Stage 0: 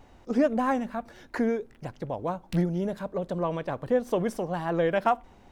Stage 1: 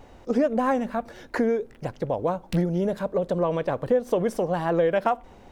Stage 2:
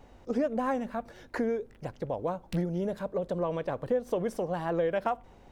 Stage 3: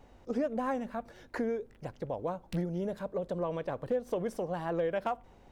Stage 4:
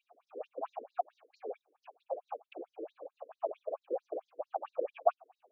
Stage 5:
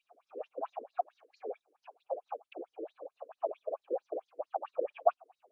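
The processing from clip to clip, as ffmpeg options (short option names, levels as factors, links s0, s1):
-af "equalizer=f=500:t=o:w=0.63:g=5,acompressor=threshold=0.0562:ratio=2.5,volume=1.68"
-af "aeval=exprs='val(0)+0.00224*(sin(2*PI*50*n/s)+sin(2*PI*2*50*n/s)/2+sin(2*PI*3*50*n/s)/3+sin(2*PI*4*50*n/s)/4+sin(2*PI*5*50*n/s)/5)':c=same,volume=0.473"
-af "asoftclip=type=hard:threshold=0.1,volume=0.708"
-filter_complex "[0:a]asplit=3[s0][s1][s2];[s0]bandpass=f=730:t=q:w=8,volume=1[s3];[s1]bandpass=f=1090:t=q:w=8,volume=0.501[s4];[s2]bandpass=f=2440:t=q:w=8,volume=0.355[s5];[s3][s4][s5]amix=inputs=3:normalize=0,afftfilt=real='hypot(re,im)*cos(2*PI*random(0))':imag='hypot(re,im)*sin(2*PI*random(1))':win_size=512:overlap=0.75,afftfilt=real='re*between(b*sr/1024,360*pow(5400/360,0.5+0.5*sin(2*PI*4.5*pts/sr))/1.41,360*pow(5400/360,0.5+0.5*sin(2*PI*4.5*pts/sr))*1.41)':imag='im*between(b*sr/1024,360*pow(5400/360,0.5+0.5*sin(2*PI*4.5*pts/sr))/1.41,360*pow(5400/360,0.5+0.5*sin(2*PI*4.5*pts/sr))*1.41)':win_size=1024:overlap=0.75,volume=7.08"
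-af "volume=1.12" -ar 24000 -c:a aac -b:a 96k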